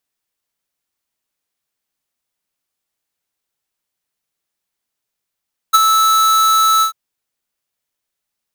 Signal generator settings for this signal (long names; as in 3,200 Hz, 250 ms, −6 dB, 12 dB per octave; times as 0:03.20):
note with an ADSR envelope square 1,310 Hz, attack 18 ms, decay 28 ms, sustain −5.5 dB, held 1.09 s, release 102 ms −6.5 dBFS